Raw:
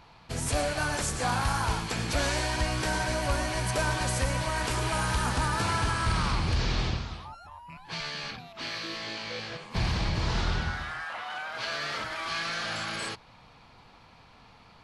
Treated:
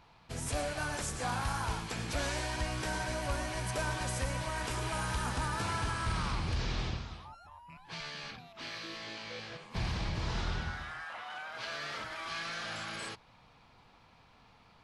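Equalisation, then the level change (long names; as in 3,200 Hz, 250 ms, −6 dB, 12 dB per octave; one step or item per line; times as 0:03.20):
notch filter 4,400 Hz, Q 23
−6.5 dB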